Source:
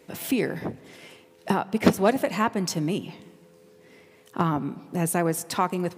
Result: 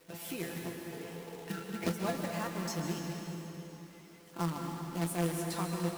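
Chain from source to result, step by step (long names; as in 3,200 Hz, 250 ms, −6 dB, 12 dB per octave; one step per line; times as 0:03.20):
healed spectral selection 0:00.95–0:01.74, 360–1,300 Hz after
in parallel at +1 dB: downward compressor 12 to 1, threshold −31 dBFS, peak gain reduction 20 dB
on the sum: tuned comb filter 170 Hz, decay 0.16 s, harmonics all, mix 90%
log-companded quantiser 4 bits
dense smooth reverb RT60 3.4 s, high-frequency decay 0.85×, pre-delay 120 ms, DRR 2 dB
level −8 dB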